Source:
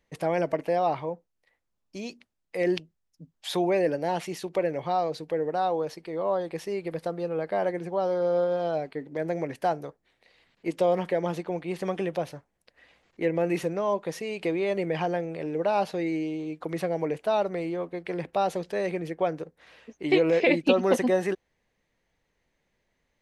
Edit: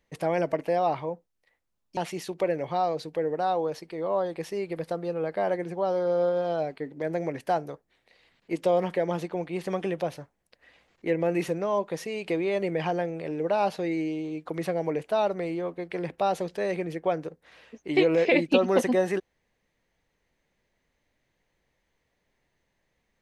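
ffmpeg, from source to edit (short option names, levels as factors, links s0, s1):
-filter_complex "[0:a]asplit=2[s0][s1];[s0]atrim=end=1.972[s2];[s1]atrim=start=4.118[s3];[s2][s3]acrossfade=d=0.004:c1=hsin:c2=hsin"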